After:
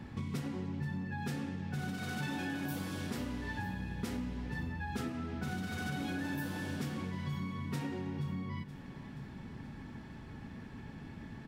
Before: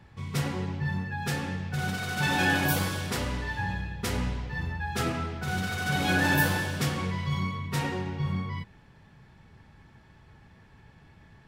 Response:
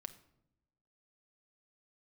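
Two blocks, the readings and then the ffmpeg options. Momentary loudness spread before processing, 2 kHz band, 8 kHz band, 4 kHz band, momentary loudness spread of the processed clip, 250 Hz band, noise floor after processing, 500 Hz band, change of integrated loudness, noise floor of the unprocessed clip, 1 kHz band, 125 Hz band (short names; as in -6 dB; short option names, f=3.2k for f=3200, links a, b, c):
9 LU, -13.5 dB, -13.5 dB, -13.5 dB, 10 LU, -5.0 dB, -48 dBFS, -10.0 dB, -10.5 dB, -56 dBFS, -12.0 dB, -8.5 dB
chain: -af "equalizer=f=250:t=o:w=0.87:g=12.5,acompressor=threshold=-39dB:ratio=10,aecho=1:1:476|952|1428|1904|2380|2856:0.168|0.101|0.0604|0.0363|0.0218|0.0131,volume=3.5dB"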